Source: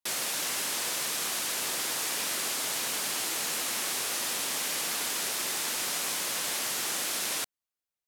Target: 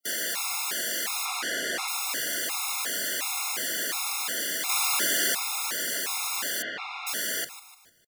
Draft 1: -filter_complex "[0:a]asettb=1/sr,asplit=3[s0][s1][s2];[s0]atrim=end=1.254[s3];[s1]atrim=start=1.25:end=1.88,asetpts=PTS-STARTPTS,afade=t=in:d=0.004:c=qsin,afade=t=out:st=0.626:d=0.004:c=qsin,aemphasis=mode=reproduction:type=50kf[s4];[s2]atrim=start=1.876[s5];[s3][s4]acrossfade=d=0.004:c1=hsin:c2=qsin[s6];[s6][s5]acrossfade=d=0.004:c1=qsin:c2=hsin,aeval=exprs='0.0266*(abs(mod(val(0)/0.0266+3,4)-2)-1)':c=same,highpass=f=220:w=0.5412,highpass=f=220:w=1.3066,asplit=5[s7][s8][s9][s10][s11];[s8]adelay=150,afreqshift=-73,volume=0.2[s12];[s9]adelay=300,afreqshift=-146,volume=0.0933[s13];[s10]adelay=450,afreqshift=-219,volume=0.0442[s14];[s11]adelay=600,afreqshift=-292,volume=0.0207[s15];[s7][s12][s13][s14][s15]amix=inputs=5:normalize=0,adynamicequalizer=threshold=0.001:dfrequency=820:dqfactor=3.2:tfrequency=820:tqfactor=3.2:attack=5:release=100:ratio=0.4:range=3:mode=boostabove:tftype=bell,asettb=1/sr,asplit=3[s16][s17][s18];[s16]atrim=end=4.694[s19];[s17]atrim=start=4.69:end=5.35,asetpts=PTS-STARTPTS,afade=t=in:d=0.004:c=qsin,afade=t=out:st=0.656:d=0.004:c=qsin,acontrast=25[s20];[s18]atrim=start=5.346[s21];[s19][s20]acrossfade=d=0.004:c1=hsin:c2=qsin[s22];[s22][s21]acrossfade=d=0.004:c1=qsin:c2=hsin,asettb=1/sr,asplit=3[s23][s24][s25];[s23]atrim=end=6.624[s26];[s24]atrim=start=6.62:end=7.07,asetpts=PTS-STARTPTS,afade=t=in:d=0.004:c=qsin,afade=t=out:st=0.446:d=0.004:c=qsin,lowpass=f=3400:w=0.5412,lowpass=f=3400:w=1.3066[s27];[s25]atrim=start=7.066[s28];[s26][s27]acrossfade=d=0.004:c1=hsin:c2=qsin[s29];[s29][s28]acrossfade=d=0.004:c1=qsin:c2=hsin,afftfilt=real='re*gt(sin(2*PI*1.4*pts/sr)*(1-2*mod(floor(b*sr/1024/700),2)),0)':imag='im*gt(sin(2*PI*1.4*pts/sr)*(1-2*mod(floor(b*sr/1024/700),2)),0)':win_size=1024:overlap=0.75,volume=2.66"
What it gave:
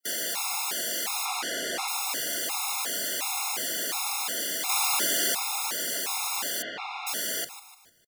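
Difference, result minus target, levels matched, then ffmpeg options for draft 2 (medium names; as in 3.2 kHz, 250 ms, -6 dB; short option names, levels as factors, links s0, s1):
2 kHz band -3.0 dB
-filter_complex "[0:a]asettb=1/sr,asplit=3[s0][s1][s2];[s0]atrim=end=1.254[s3];[s1]atrim=start=1.25:end=1.88,asetpts=PTS-STARTPTS,afade=t=in:d=0.004:c=qsin,afade=t=out:st=0.626:d=0.004:c=qsin,aemphasis=mode=reproduction:type=50kf[s4];[s2]atrim=start=1.876[s5];[s3][s4]acrossfade=d=0.004:c1=hsin:c2=qsin[s6];[s6][s5]acrossfade=d=0.004:c1=qsin:c2=hsin,aeval=exprs='0.0266*(abs(mod(val(0)/0.0266+3,4)-2)-1)':c=same,highpass=f=220:w=0.5412,highpass=f=220:w=1.3066,asplit=5[s7][s8][s9][s10][s11];[s8]adelay=150,afreqshift=-73,volume=0.2[s12];[s9]adelay=300,afreqshift=-146,volume=0.0933[s13];[s10]adelay=450,afreqshift=-219,volume=0.0442[s14];[s11]adelay=600,afreqshift=-292,volume=0.0207[s15];[s7][s12][s13][s14][s15]amix=inputs=5:normalize=0,adynamicequalizer=threshold=0.001:dfrequency=1700:dqfactor=3.2:tfrequency=1700:tqfactor=3.2:attack=5:release=100:ratio=0.4:range=3:mode=boostabove:tftype=bell,asettb=1/sr,asplit=3[s16][s17][s18];[s16]atrim=end=4.694[s19];[s17]atrim=start=4.69:end=5.35,asetpts=PTS-STARTPTS,afade=t=in:d=0.004:c=qsin,afade=t=out:st=0.656:d=0.004:c=qsin,acontrast=25[s20];[s18]atrim=start=5.346[s21];[s19][s20]acrossfade=d=0.004:c1=hsin:c2=qsin[s22];[s22][s21]acrossfade=d=0.004:c1=qsin:c2=hsin,asettb=1/sr,asplit=3[s23][s24][s25];[s23]atrim=end=6.624[s26];[s24]atrim=start=6.62:end=7.07,asetpts=PTS-STARTPTS,afade=t=in:d=0.004:c=qsin,afade=t=out:st=0.446:d=0.004:c=qsin,lowpass=f=3400:w=0.5412,lowpass=f=3400:w=1.3066[s27];[s25]atrim=start=7.066[s28];[s26][s27]acrossfade=d=0.004:c1=hsin:c2=qsin[s29];[s29][s28]acrossfade=d=0.004:c1=qsin:c2=hsin,afftfilt=real='re*gt(sin(2*PI*1.4*pts/sr)*(1-2*mod(floor(b*sr/1024/700),2)),0)':imag='im*gt(sin(2*PI*1.4*pts/sr)*(1-2*mod(floor(b*sr/1024/700),2)),0)':win_size=1024:overlap=0.75,volume=2.66"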